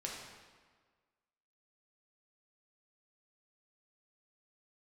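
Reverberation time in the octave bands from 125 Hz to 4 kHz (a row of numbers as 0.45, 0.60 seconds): 1.5, 1.5, 1.5, 1.5, 1.4, 1.2 seconds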